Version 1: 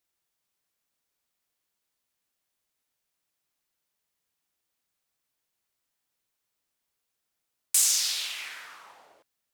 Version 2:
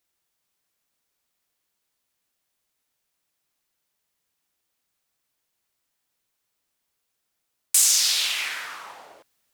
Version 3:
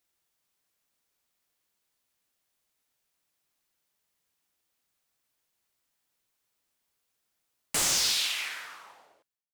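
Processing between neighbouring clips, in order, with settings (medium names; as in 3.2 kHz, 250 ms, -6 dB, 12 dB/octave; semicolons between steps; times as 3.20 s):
gain riding within 3 dB 0.5 s; trim +7 dB
fade out at the end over 1.83 s; slew-rate limiter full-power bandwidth 450 Hz; trim -1.5 dB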